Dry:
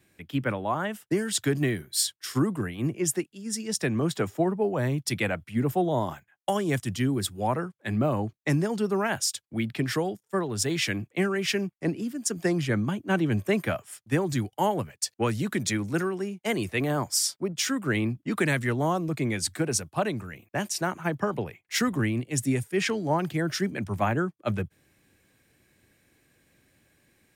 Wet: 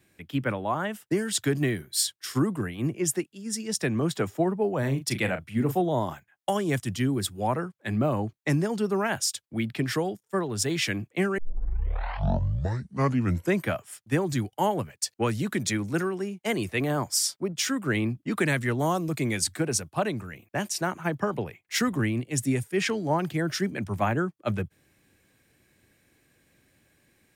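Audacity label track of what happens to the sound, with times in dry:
4.790000	5.810000	double-tracking delay 37 ms −9.5 dB
11.380000	11.380000	tape start 2.31 s
18.790000	19.440000	high-shelf EQ 4,400 Hz +8.5 dB

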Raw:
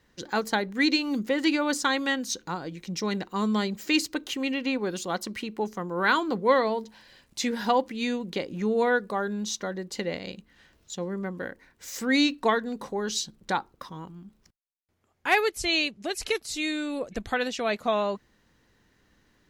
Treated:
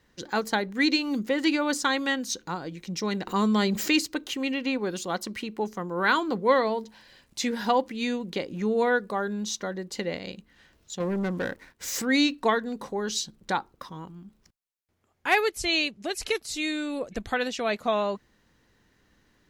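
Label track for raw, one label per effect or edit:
3.270000	3.990000	envelope flattener amount 50%
11.000000	12.020000	leveller curve on the samples passes 2

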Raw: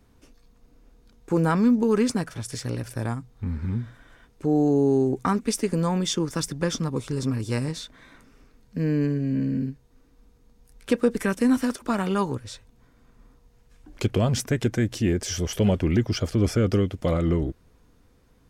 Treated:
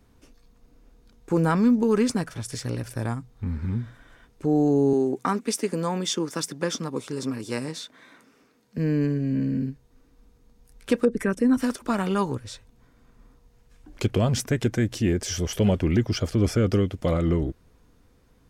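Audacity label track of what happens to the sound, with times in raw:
4.930000	8.780000	high-pass filter 220 Hz
11.050000	11.600000	spectral envelope exaggerated exponent 1.5

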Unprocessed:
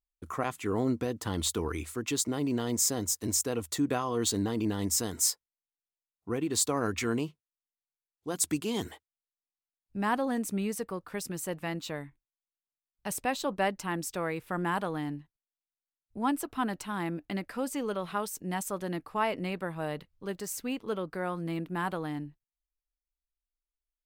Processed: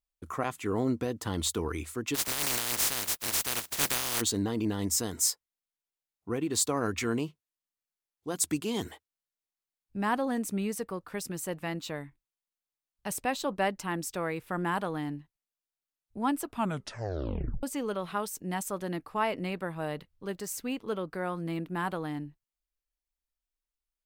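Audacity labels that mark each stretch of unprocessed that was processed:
2.140000	4.200000	compressing power law on the bin magnitudes exponent 0.13
16.480000	16.480000	tape stop 1.15 s

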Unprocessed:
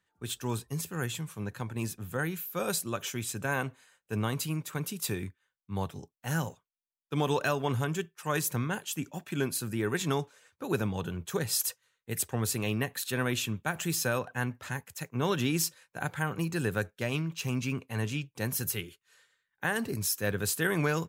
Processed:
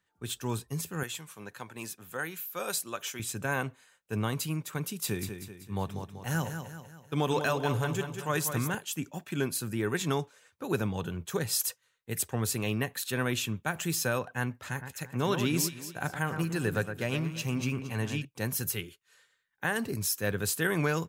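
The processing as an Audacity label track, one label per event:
1.030000	3.200000	high-pass filter 600 Hz 6 dB per octave
4.860000	8.750000	repeating echo 192 ms, feedback 47%, level −8 dB
14.560000	18.250000	delay that swaps between a low-pass and a high-pass 114 ms, split 2,000 Hz, feedback 57%, level −7.5 dB

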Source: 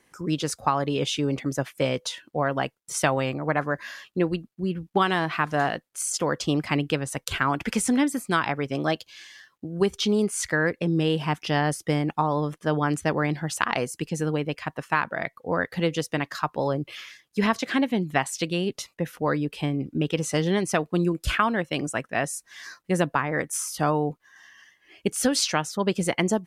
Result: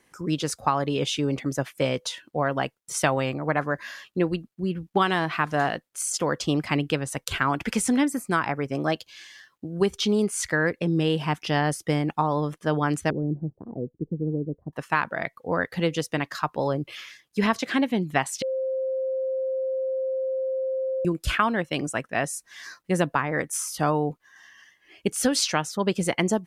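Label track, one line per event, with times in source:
8.050000	8.920000	parametric band 3,500 Hz −9.5 dB 0.71 octaves
13.100000	14.730000	inverse Chebyshev low-pass filter stop band from 2,600 Hz, stop band 80 dB
18.420000	21.050000	beep over 526 Hz −24 dBFS

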